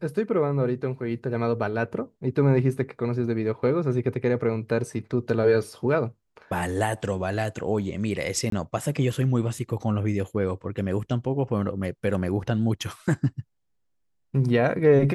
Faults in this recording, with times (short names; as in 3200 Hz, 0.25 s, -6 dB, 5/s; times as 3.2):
8.5–8.52 gap 23 ms